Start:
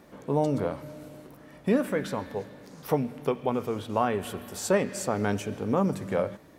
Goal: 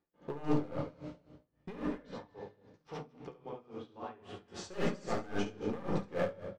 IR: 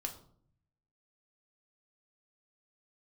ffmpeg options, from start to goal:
-filter_complex "[0:a]agate=range=-25dB:threshold=-44dB:ratio=16:detection=peak,lowpass=frequency=5600:width=0.5412,lowpass=frequency=5600:width=1.3066,asettb=1/sr,asplit=3[link_01][link_02][link_03];[link_01]atrim=end=1.794[link_04];[link_02]atrim=start=1.79:end=4.48,asetpts=PTS-STARTPTS,afade=type=in:duration=0.004:curve=qsin,afade=type=out:start_time=2.686:duration=0.004:curve=qsin,acompressor=threshold=-41dB:ratio=3[link_05];[link_03]atrim=start=4.476[link_06];[link_04][link_05]acrossfade=duration=0.004:curve1=hsin:curve2=qsin[link_07];[link_07][link_06]acrossfade=duration=0.004:curve1=qsin:curve2=hsin,flanger=delay=9.8:depth=6.2:regen=-63:speed=0.46:shape=sinusoidal,asoftclip=type=hard:threshold=-27.5dB,aecho=1:1:69.97|224.5:0.794|0.282[link_08];[1:a]atrim=start_sample=2205[link_09];[link_08][link_09]afir=irnorm=-1:irlink=0,aeval=exprs='val(0)*pow(10,-19*(0.5-0.5*cos(2*PI*3.7*n/s))/20)':channel_layout=same,volume=2dB"

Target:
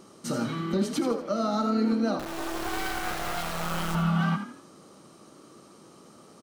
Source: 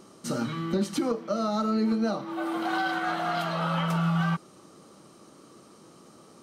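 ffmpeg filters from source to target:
ffmpeg -i in.wav -filter_complex "[0:a]asettb=1/sr,asplit=3[link_01][link_02][link_03];[link_01]atrim=end=2.194[link_04];[link_02]atrim=start=2.19:end=3.95,asetpts=PTS-STARTPTS,afade=type=in:duration=0.004:curve=qsin,afade=type=out:start_time=1.756:duration=0.004:curve=qsin,acrusher=bits=3:dc=4:mix=0:aa=0.000001[link_05];[link_03]atrim=start=3.946[link_06];[link_04][link_05]acrossfade=duration=0.004:curve1=hsin:curve2=qsin[link_07];[link_07][link_06]acrossfade=duration=0.004:curve1=qsin:curve2=hsin,asplit=5[link_08][link_09][link_10][link_11][link_12];[link_09]adelay=81,afreqshift=36,volume=-9.5dB[link_13];[link_10]adelay=162,afreqshift=72,volume=-17.9dB[link_14];[link_11]adelay=243,afreqshift=108,volume=-26.3dB[link_15];[link_12]adelay=324,afreqshift=144,volume=-34.7dB[link_16];[link_08][link_13][link_14][link_15][link_16]amix=inputs=5:normalize=0" out.wav

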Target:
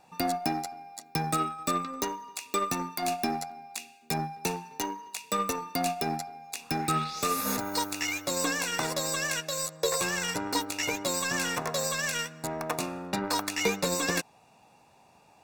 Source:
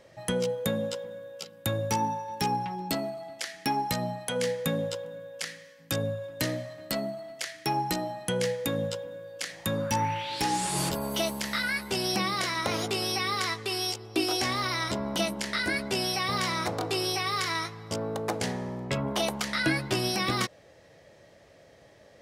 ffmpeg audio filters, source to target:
ffmpeg -i in.wav -af "aeval=exprs='0.188*(cos(1*acos(clip(val(0)/0.188,-1,1)))-cos(1*PI/2))+0.00944*(cos(5*acos(clip(val(0)/0.188,-1,1)))-cos(5*PI/2))+0.0015*(cos(6*acos(clip(val(0)/0.188,-1,1)))-cos(6*PI/2))+0.0168*(cos(7*acos(clip(val(0)/0.188,-1,1)))-cos(7*PI/2))':channel_layout=same,asetrate=63504,aresample=44100,asuperstop=centerf=3100:order=12:qfactor=7.9" out.wav

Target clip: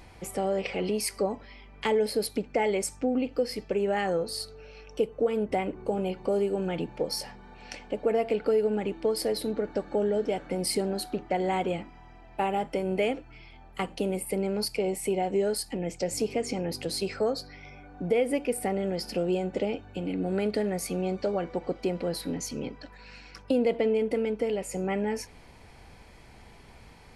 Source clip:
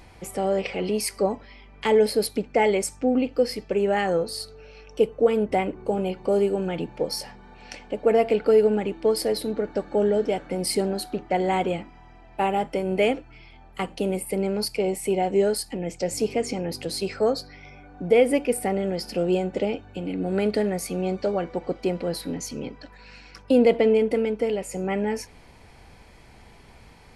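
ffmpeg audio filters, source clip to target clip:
ffmpeg -i in.wav -af "acompressor=threshold=-24dB:ratio=2,volume=-1.5dB" out.wav

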